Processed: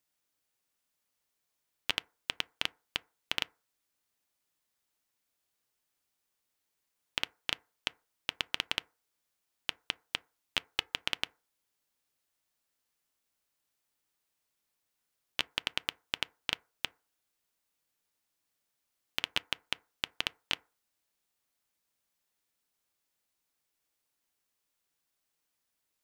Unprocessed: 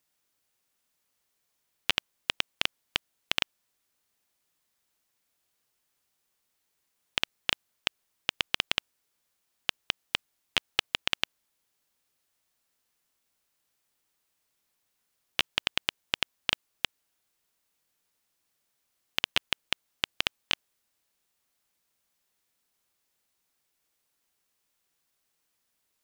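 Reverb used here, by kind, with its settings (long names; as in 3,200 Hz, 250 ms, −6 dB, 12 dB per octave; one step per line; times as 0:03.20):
feedback delay network reverb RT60 0.35 s, low-frequency decay 0.75×, high-frequency decay 0.35×, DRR 17 dB
level −5 dB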